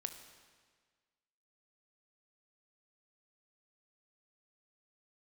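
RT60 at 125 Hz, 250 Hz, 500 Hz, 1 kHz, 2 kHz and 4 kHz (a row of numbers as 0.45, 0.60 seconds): 1.6, 1.6, 1.6, 1.6, 1.6, 1.4 seconds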